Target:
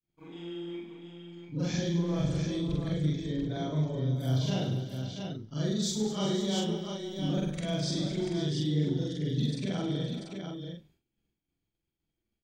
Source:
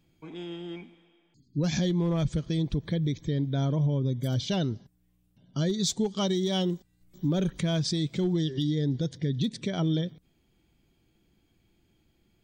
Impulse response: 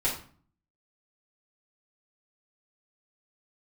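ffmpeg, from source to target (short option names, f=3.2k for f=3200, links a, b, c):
-af "afftfilt=real='re':imag='-im':win_size=4096:overlap=0.75,aecho=1:1:61|101|209|386|514|689:0.299|0.316|0.237|0.158|0.2|0.501,agate=range=-33dB:threshold=-59dB:ratio=3:detection=peak"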